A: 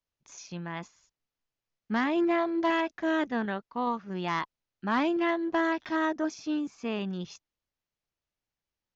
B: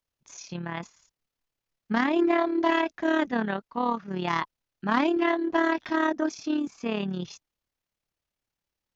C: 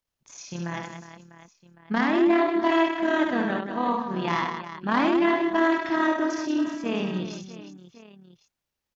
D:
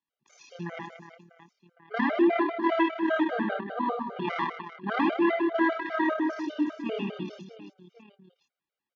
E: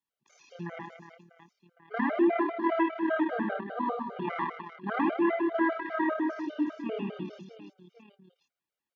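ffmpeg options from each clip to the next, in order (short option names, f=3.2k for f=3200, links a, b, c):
-af "tremolo=f=36:d=0.571,volume=5.5dB"
-af "aecho=1:1:70|182|361.2|647.9|1107:0.631|0.398|0.251|0.158|0.1"
-filter_complex "[0:a]acrossover=split=160 4000:gain=0.0708 1 0.126[a][b][c];[a][b][c]amix=inputs=3:normalize=0,afftfilt=real='re*gt(sin(2*PI*5*pts/sr)*(1-2*mod(floor(b*sr/1024/400),2)),0)':imag='im*gt(sin(2*PI*5*pts/sr)*(1-2*mod(floor(b*sr/1024/400),2)),0)':win_size=1024:overlap=0.75"
-filter_complex "[0:a]acrossover=split=2500[a][b];[b]acompressor=threshold=-57dB:ratio=4:attack=1:release=60[c];[a][c]amix=inputs=2:normalize=0,volume=-2dB"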